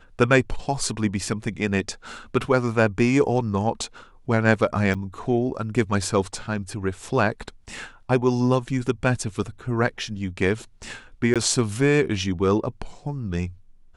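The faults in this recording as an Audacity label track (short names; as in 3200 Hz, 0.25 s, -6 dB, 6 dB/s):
4.940000	4.950000	gap 6.7 ms
11.340000	11.360000	gap 17 ms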